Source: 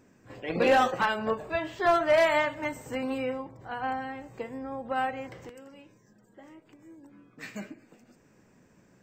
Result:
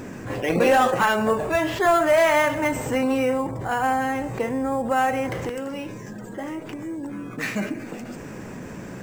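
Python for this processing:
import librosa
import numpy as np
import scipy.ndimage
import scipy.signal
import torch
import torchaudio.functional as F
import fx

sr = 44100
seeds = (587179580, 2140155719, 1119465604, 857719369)

p1 = fx.sample_hold(x, sr, seeds[0], rate_hz=8300.0, jitter_pct=0)
p2 = x + (p1 * 10.0 ** (-6.0 / 20.0))
y = fx.env_flatten(p2, sr, amount_pct=50)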